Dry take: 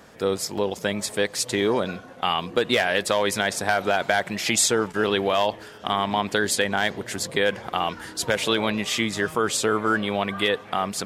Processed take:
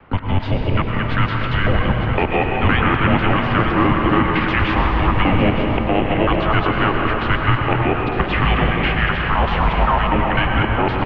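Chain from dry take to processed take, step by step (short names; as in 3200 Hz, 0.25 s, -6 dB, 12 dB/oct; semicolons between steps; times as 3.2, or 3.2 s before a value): local time reversal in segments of 0.128 s; notches 60/120/180/240/300/360/420 Hz; gate -33 dBFS, range -17 dB; in parallel at +2 dB: limiter -19 dBFS, peak gain reduction 11 dB; on the sum: harmoniser -4 st -7 dB, +5 st -13 dB; on a send: echo 0.905 s -11 dB; on the sum: plate-style reverb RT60 3.3 s, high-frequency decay 0.6×, pre-delay 85 ms, DRR 1.5 dB; mistuned SSB -390 Hz 290–3100 Hz; three-band squash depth 40%; gain +1 dB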